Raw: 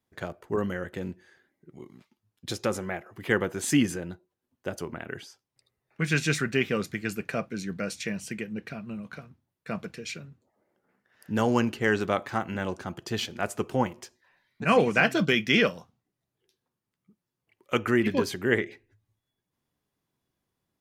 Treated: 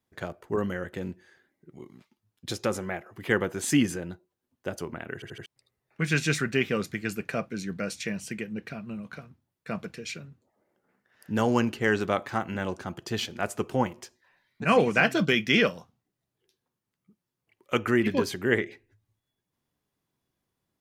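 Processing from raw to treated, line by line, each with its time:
5.14 stutter in place 0.08 s, 4 plays

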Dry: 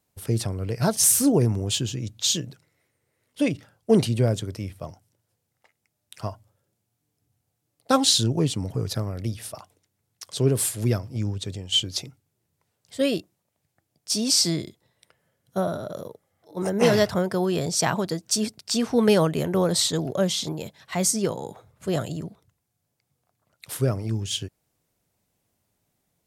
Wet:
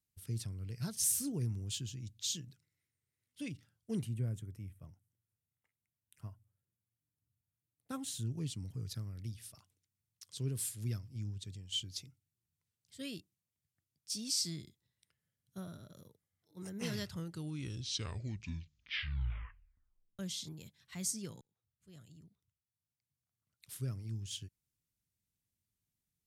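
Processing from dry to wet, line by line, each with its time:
3.99–8.27 bell 4600 Hz -15 dB 1.2 oct
16.94 tape stop 3.25 s
21.41–23.86 fade in
whole clip: passive tone stack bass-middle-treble 6-0-2; gain +1 dB

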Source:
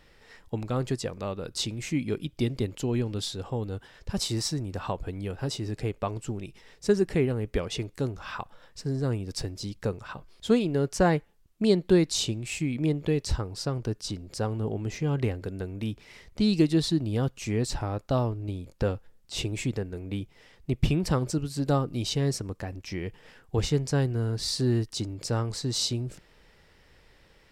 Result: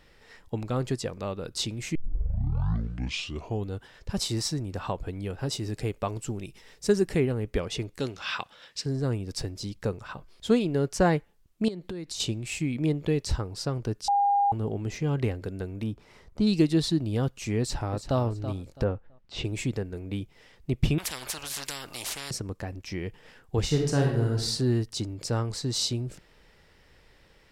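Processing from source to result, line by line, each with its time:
1.95 tape start 1.77 s
5.52–7.2 high shelf 5900 Hz +7 dB
8–8.86 weighting filter D
11.68–12.2 compressor 16:1, threshold -32 dBFS
14.08–14.52 bleep 807 Hz -19.5 dBFS
15.83–16.47 resonant high shelf 1600 Hz -6.5 dB, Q 1.5
17.59–18.19 echo throw 0.33 s, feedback 25%, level -11 dB
18.83–19.43 LPF 1500 Hz -> 3900 Hz
20.98–22.31 spectral compressor 10:1
23.65–24.34 reverb throw, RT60 0.84 s, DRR 0.5 dB

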